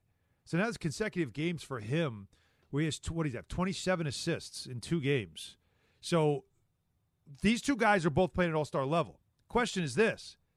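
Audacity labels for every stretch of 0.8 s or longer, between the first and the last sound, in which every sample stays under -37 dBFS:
6.380000	7.430000	silence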